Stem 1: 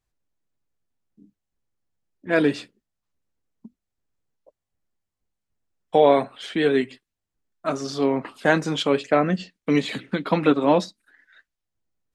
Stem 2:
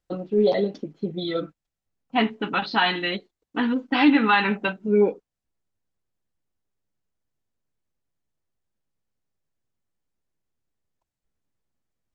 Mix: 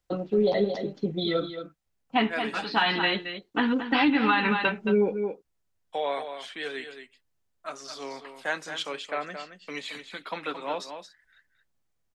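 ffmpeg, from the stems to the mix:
-filter_complex "[0:a]highpass=f=1.2k:p=1,volume=-5.5dB,asplit=3[a][b][c];[b]volume=-9dB[d];[1:a]volume=2.5dB,asplit=2[e][f];[f]volume=-11dB[g];[c]apad=whole_len=535571[h];[e][h]sidechaincompress=threshold=-41dB:ratio=8:attack=16:release=390[i];[d][g]amix=inputs=2:normalize=0,aecho=0:1:223:1[j];[a][i][j]amix=inputs=3:normalize=0,acrossover=split=210[k][l];[l]acompressor=threshold=-19dB:ratio=6[m];[k][m]amix=inputs=2:normalize=0,equalizer=f=250:t=o:w=1.5:g=-4"

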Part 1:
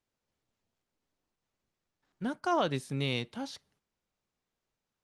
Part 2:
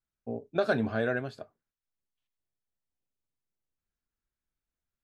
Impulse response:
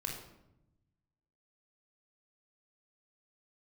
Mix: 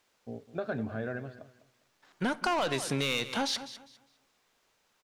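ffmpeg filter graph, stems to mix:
-filter_complex "[0:a]asplit=2[a][b];[b]highpass=f=720:p=1,volume=20dB,asoftclip=type=tanh:threshold=-17dB[c];[a][c]amix=inputs=2:normalize=0,lowpass=f=7.6k:p=1,volume=-6dB,volume=3dB,asplit=3[d][e][f];[e]volume=-20.5dB[g];[f]volume=-16dB[h];[1:a]bass=f=250:g=5,treble=f=4k:g=-14,volume=-7.5dB,asplit=2[i][j];[j]volume=-15.5dB[k];[2:a]atrim=start_sample=2205[l];[g][l]afir=irnorm=-1:irlink=0[m];[h][k]amix=inputs=2:normalize=0,aecho=0:1:202|404|606|808:1|0.24|0.0576|0.0138[n];[d][i][m][n]amix=inputs=4:normalize=0,acompressor=threshold=-27dB:ratio=6"

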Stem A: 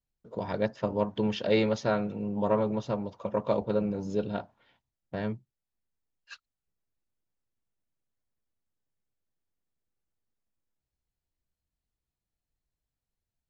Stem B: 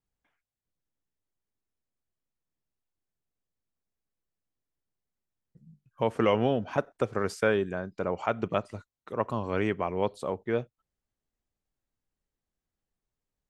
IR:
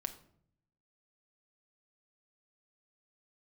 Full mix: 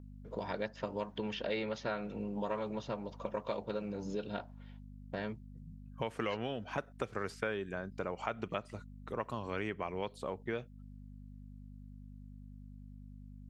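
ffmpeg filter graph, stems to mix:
-filter_complex "[0:a]aeval=exprs='val(0)+0.00708*(sin(2*PI*50*n/s)+sin(2*PI*2*50*n/s)/2+sin(2*PI*3*50*n/s)/3+sin(2*PI*4*50*n/s)/4+sin(2*PI*5*50*n/s)/5)':c=same,lowshelf=f=150:g=-8.5,volume=0dB[a];[1:a]volume=-1.5dB[b];[a][b]amix=inputs=2:normalize=0,acrossover=split=1500|3500[c][d][e];[c]acompressor=threshold=-36dB:ratio=4[f];[d]acompressor=threshold=-41dB:ratio=4[g];[e]acompressor=threshold=-58dB:ratio=4[h];[f][g][h]amix=inputs=3:normalize=0"

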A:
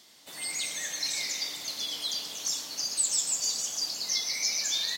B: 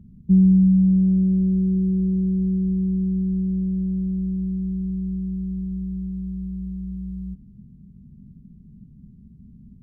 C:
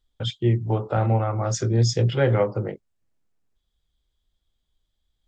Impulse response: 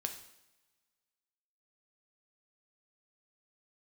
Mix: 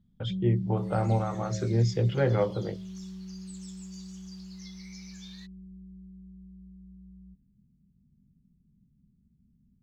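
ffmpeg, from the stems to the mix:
-filter_complex "[0:a]highpass=990,adelay=500,volume=-15dB[a];[1:a]volume=-19dB[b];[2:a]volume=-4.5dB[c];[a][b][c]amix=inputs=3:normalize=0,lowpass=f=2.3k:p=1,bandreject=f=106.9:t=h:w=4,bandreject=f=213.8:t=h:w=4,bandreject=f=320.7:t=h:w=4,bandreject=f=427.6:t=h:w=4,bandreject=f=534.5:t=h:w=4,bandreject=f=641.4:t=h:w=4"

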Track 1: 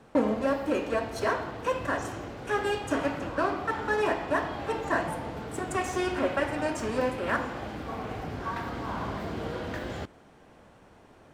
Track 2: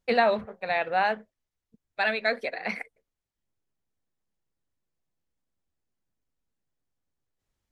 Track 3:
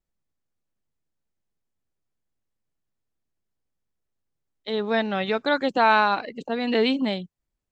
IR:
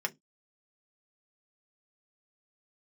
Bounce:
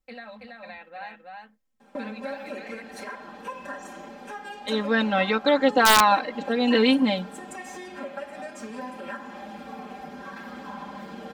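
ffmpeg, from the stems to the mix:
-filter_complex "[0:a]highpass=140,aecho=1:1:5:0.95,acompressor=threshold=-31dB:ratio=3,adelay=1800,volume=-7dB[a];[1:a]equalizer=f=480:t=o:w=0.77:g=-7,agate=range=-20dB:threshold=-49dB:ratio=16:detection=peak,alimiter=limit=-21dB:level=0:latency=1:release=429,volume=-12dB,asplit=2[b][c];[c]volume=-3dB[d];[2:a]volume=-1.5dB,asplit=2[e][f];[f]volume=-15.5dB[g];[3:a]atrim=start_sample=2205[h];[g][h]afir=irnorm=-1:irlink=0[i];[d]aecho=0:1:328:1[j];[a][b][e][i][j]amix=inputs=5:normalize=0,aecho=1:1:3.8:0.96,aeval=exprs='(mod(2.24*val(0)+1,2)-1)/2.24':c=same"

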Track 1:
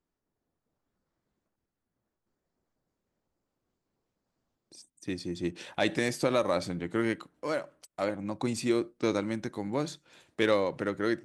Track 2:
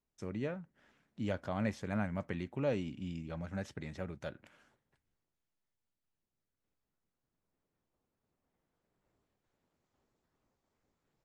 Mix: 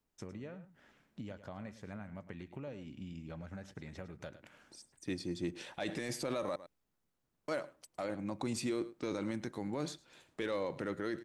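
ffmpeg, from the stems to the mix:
-filter_complex "[0:a]volume=-3.5dB,asplit=3[a][b][c];[a]atrim=end=6.56,asetpts=PTS-STARTPTS,afade=t=out:st=6.556:d=0.004:c=hsin[d];[b]atrim=start=6.56:end=7.48,asetpts=PTS-STARTPTS,volume=0[e];[c]atrim=start=7.48,asetpts=PTS-STARTPTS,afade=t=in:d=0.004:c=hsin[f];[d][e][f]concat=n=3:v=0:a=1,asplit=2[g][h];[h]volume=-22dB[i];[1:a]acompressor=threshold=-45dB:ratio=12,volume=3dB,asplit=2[j][k];[k]volume=-13.5dB[l];[i][l]amix=inputs=2:normalize=0,aecho=0:1:106:1[m];[g][j][m]amix=inputs=3:normalize=0,alimiter=level_in=3.5dB:limit=-24dB:level=0:latency=1:release=16,volume=-3.5dB"

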